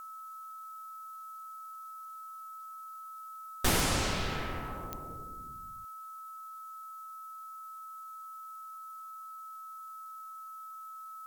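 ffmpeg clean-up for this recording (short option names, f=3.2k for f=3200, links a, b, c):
-af "adeclick=t=4,bandreject=f=1.3k:w=30,afftdn=nr=30:nf=-46"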